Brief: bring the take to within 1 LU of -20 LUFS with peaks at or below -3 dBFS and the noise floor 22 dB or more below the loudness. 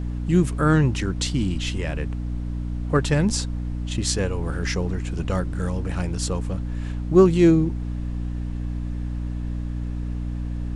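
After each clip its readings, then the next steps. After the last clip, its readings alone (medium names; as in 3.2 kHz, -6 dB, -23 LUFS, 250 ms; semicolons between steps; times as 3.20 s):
hum 60 Hz; highest harmonic 300 Hz; hum level -25 dBFS; noise floor -29 dBFS; noise floor target -46 dBFS; loudness -24.0 LUFS; peak level -3.5 dBFS; loudness target -20.0 LUFS
-> de-hum 60 Hz, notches 5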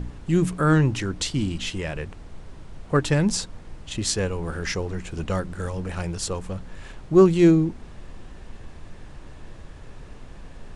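hum not found; noise floor -43 dBFS; noise floor target -46 dBFS
-> noise print and reduce 6 dB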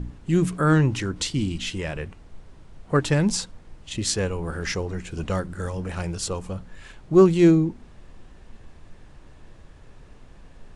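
noise floor -48 dBFS; loudness -23.5 LUFS; peak level -5.0 dBFS; loudness target -20.0 LUFS
-> trim +3.5 dB; peak limiter -3 dBFS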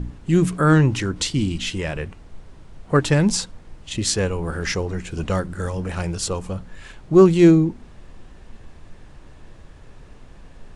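loudness -20.0 LUFS; peak level -3.0 dBFS; noise floor -45 dBFS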